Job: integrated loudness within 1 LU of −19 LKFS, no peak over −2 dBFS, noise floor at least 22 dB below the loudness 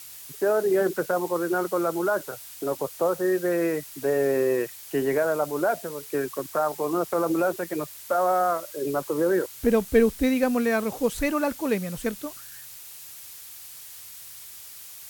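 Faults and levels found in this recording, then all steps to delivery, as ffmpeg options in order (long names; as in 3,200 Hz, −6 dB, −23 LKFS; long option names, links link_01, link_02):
background noise floor −43 dBFS; target noise floor −48 dBFS; integrated loudness −25.5 LKFS; sample peak −9.0 dBFS; target loudness −19.0 LKFS
→ -af "afftdn=noise_reduction=6:noise_floor=-43"
-af "volume=6.5dB"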